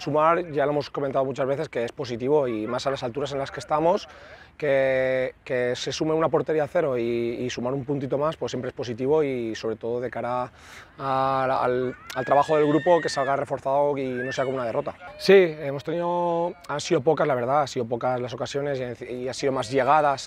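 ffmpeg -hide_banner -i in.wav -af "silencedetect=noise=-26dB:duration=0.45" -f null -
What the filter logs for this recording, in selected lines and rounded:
silence_start: 3.98
silence_end: 4.60 | silence_duration: 0.62
silence_start: 10.45
silence_end: 11.00 | silence_duration: 0.55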